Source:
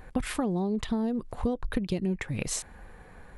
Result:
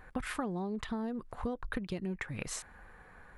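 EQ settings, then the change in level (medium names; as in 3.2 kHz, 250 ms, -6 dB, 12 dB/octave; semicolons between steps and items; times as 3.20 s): peaking EQ 1.4 kHz +9 dB 1.4 oct; -8.5 dB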